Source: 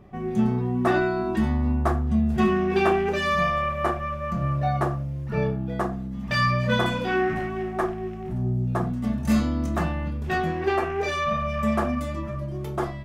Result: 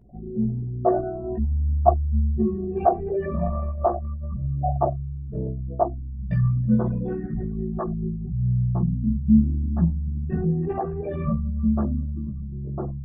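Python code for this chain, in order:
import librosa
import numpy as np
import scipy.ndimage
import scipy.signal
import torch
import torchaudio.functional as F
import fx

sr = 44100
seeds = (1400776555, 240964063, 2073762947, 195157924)

y = fx.envelope_sharpen(x, sr, power=3.0)
y = fx.chorus_voices(y, sr, voices=6, hz=0.39, base_ms=16, depth_ms=2.4, mix_pct=50)
y = fx.peak_eq(y, sr, hz=fx.steps((0.0, 680.0), (6.2, 170.0)), db=14.0, octaves=0.57)
y = F.gain(torch.from_numpy(y), -1.0).numpy()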